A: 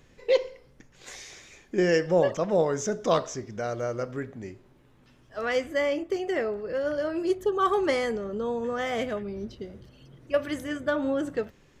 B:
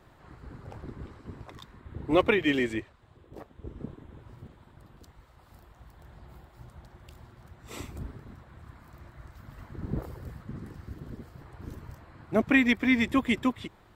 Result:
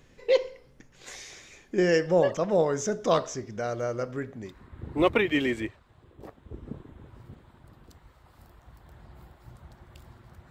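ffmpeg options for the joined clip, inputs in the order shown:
-filter_complex "[0:a]apad=whole_dur=10.5,atrim=end=10.5,atrim=end=4.57,asetpts=PTS-STARTPTS[a];[1:a]atrim=start=1.56:end=7.63,asetpts=PTS-STARTPTS[b];[a][b]acrossfade=d=0.14:c1=tri:c2=tri"

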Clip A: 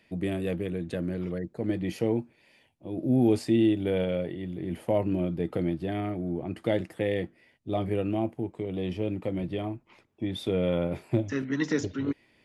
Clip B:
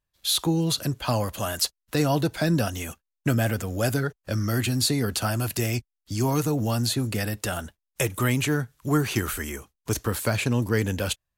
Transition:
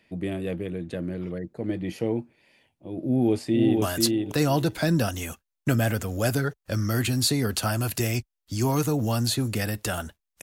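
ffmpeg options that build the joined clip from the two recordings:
-filter_complex "[0:a]apad=whole_dur=10.42,atrim=end=10.42,atrim=end=3.822[a];[1:a]atrim=start=1.408:end=8.01[b];[a][b]acrossfade=d=0.004:c1=hsin:c2=hsin,asplit=2[c][d];[d]afade=t=in:st=3.03:d=0.01,afade=t=out:st=3.82:d=0.01,aecho=0:1:490|980|1470:0.707946|0.106192|0.0159288[e];[c][e]amix=inputs=2:normalize=0"

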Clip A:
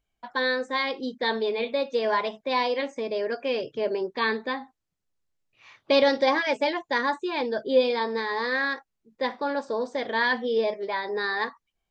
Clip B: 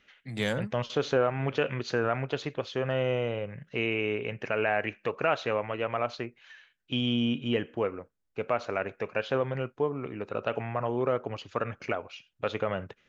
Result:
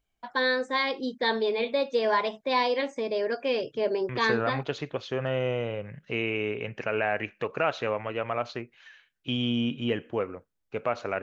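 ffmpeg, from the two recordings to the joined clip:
-filter_complex "[0:a]apad=whole_dur=11.22,atrim=end=11.22,atrim=end=4.63,asetpts=PTS-STARTPTS[a];[1:a]atrim=start=1.73:end=8.86,asetpts=PTS-STARTPTS[b];[a][b]acrossfade=d=0.54:c1=log:c2=log"

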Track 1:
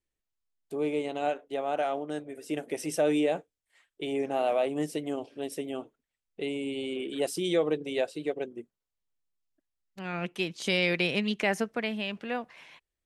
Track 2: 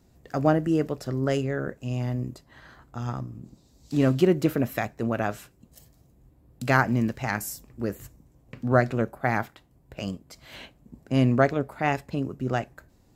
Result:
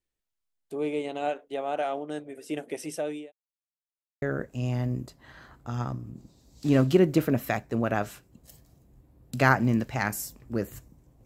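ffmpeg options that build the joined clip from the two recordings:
-filter_complex "[0:a]apad=whole_dur=11.25,atrim=end=11.25,asplit=2[a][b];[a]atrim=end=3.32,asetpts=PTS-STARTPTS,afade=t=out:st=2.48:d=0.84:c=qsin[c];[b]atrim=start=3.32:end=4.22,asetpts=PTS-STARTPTS,volume=0[d];[1:a]atrim=start=1.5:end=8.53,asetpts=PTS-STARTPTS,afade=t=in:d=0.004:c=hsin[e];[c][d][e]concat=n=3:v=0:a=1"

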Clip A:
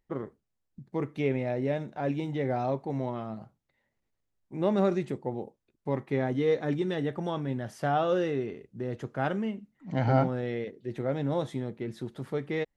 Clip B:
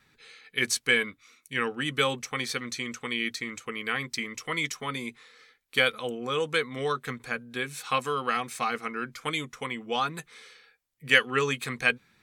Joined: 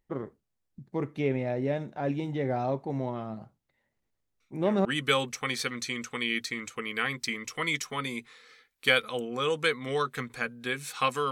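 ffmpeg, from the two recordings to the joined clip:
-filter_complex "[1:a]asplit=2[a][b];[0:a]apad=whole_dur=11.31,atrim=end=11.31,atrim=end=4.852[c];[b]atrim=start=1.748:end=8.21[d];[a]atrim=start=1.3:end=1.75,asetpts=PTS-STARTPTS,volume=-17dB,afade=t=in:d=0.004:c=hsin,afade=t=out:st=0.446:d=0.004:c=hsin,adelay=4400[e];[c][d]acrossfade=d=0.004:c1=hsin:c2=hsin[f];[f][e]amix=inputs=2:normalize=0"

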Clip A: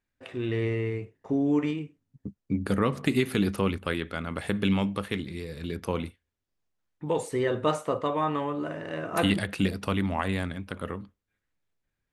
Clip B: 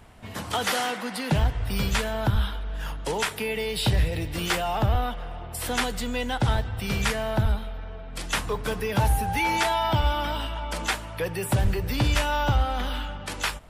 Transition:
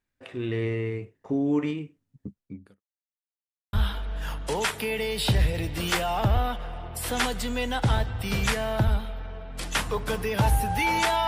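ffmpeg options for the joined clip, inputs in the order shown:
-filter_complex "[0:a]apad=whole_dur=11.27,atrim=end=11.27,asplit=2[a][b];[a]atrim=end=2.81,asetpts=PTS-STARTPTS,afade=t=out:st=2.25:d=0.56:c=qua[c];[b]atrim=start=2.81:end=3.73,asetpts=PTS-STARTPTS,volume=0[d];[1:a]atrim=start=2.31:end=9.85,asetpts=PTS-STARTPTS,afade=t=in:d=0.004:c=hsin[e];[c][d][e]concat=n=3:v=0:a=1"

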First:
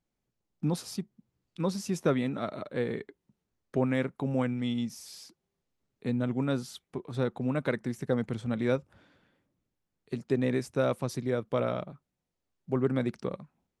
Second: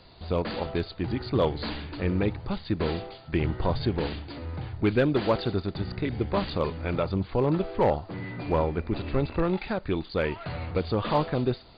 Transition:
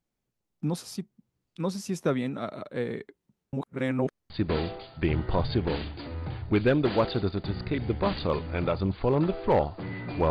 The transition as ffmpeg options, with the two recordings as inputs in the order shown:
-filter_complex "[0:a]apad=whole_dur=10.3,atrim=end=10.3,asplit=2[a][b];[a]atrim=end=3.532[c];[b]atrim=start=3.528:end=4.302,asetpts=PTS-STARTPTS,areverse[d];[1:a]atrim=start=2.608:end=8.61[e];[c][d]acrossfade=d=0.004:c1=hsin:c2=hsin[f];[f][e]acrossfade=d=0.004:c1=hsin:c2=hsin"

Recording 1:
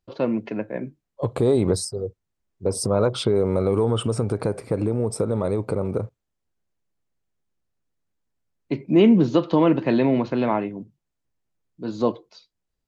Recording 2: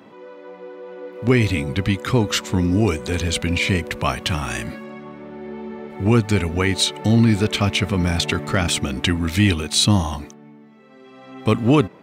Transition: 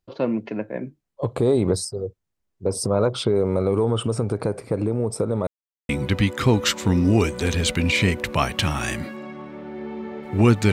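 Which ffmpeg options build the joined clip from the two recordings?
-filter_complex "[0:a]apad=whole_dur=10.72,atrim=end=10.72,asplit=2[a][b];[a]atrim=end=5.47,asetpts=PTS-STARTPTS,afade=t=out:st=5.466:d=0.004:c=hsin[c];[b]atrim=start=5.47:end=5.89,asetpts=PTS-STARTPTS,volume=0[d];[1:a]atrim=start=1.56:end=6.39,asetpts=PTS-STARTPTS,afade=t=in:d=0.004:c=hsin[e];[c][d][e]concat=n=3:v=0:a=1"

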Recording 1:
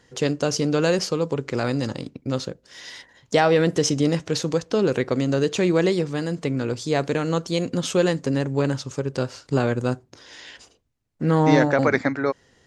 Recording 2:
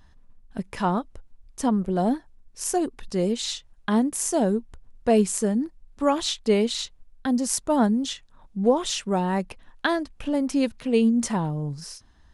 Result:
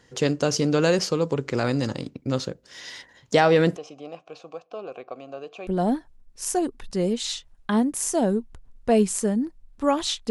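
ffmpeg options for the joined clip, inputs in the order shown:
-filter_complex "[0:a]asplit=3[a][b][c];[a]afade=t=out:st=3.75:d=0.02[d];[b]asplit=3[e][f][g];[e]bandpass=f=730:t=q:w=8,volume=0dB[h];[f]bandpass=f=1.09k:t=q:w=8,volume=-6dB[i];[g]bandpass=f=2.44k:t=q:w=8,volume=-9dB[j];[h][i][j]amix=inputs=3:normalize=0,afade=t=in:st=3.75:d=0.02,afade=t=out:st=5.67:d=0.02[k];[c]afade=t=in:st=5.67:d=0.02[l];[d][k][l]amix=inputs=3:normalize=0,apad=whole_dur=10.3,atrim=end=10.3,atrim=end=5.672[m];[1:a]atrim=start=1.858:end=6.49[n];[m][n]acrossfade=d=0.004:c1=hsin:c2=hsin"

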